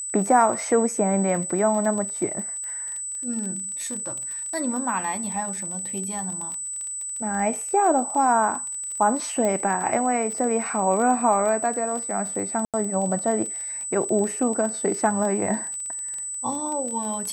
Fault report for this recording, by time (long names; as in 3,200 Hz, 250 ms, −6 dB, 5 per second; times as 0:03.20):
surface crackle 25 per second −29 dBFS
whistle 8,000 Hz −29 dBFS
0:09.45: click −14 dBFS
0:12.65–0:12.74: drop-out 87 ms